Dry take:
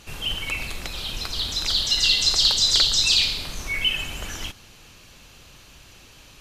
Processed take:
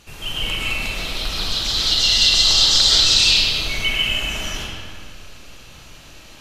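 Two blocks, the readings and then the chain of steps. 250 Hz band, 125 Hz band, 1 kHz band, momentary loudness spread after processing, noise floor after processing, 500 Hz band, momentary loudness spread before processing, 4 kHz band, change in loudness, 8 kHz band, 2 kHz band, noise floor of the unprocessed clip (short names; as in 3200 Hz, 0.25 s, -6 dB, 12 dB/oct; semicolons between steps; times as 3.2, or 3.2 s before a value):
+6.5 dB, +5.5 dB, +6.5 dB, 15 LU, -43 dBFS, +7.0 dB, 15 LU, +5.0 dB, +5.0 dB, +4.5 dB, +5.5 dB, -49 dBFS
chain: digital reverb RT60 2 s, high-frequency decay 0.7×, pre-delay 85 ms, DRR -7.5 dB; gain -2 dB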